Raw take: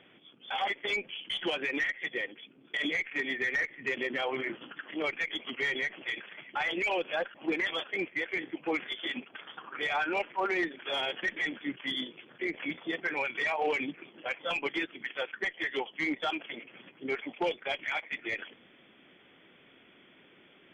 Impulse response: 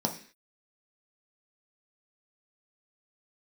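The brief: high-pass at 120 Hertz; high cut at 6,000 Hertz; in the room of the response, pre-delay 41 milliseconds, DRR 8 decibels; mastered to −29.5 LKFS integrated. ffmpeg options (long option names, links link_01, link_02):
-filter_complex "[0:a]highpass=120,lowpass=6000,asplit=2[link_01][link_02];[1:a]atrim=start_sample=2205,adelay=41[link_03];[link_02][link_03]afir=irnorm=-1:irlink=0,volume=-15dB[link_04];[link_01][link_04]amix=inputs=2:normalize=0,volume=2.5dB"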